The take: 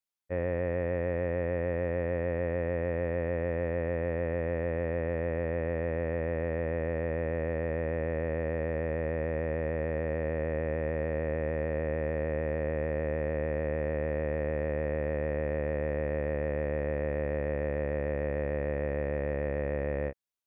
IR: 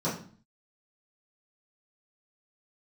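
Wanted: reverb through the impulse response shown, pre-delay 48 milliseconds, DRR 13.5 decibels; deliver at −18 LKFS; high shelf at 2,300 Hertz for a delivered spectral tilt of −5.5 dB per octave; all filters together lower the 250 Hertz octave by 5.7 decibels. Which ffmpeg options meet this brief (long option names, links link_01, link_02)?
-filter_complex "[0:a]equalizer=frequency=250:width_type=o:gain=-8.5,highshelf=frequency=2300:gain=-7.5,asplit=2[link_01][link_02];[1:a]atrim=start_sample=2205,adelay=48[link_03];[link_02][link_03]afir=irnorm=-1:irlink=0,volume=-22.5dB[link_04];[link_01][link_04]amix=inputs=2:normalize=0,volume=15.5dB"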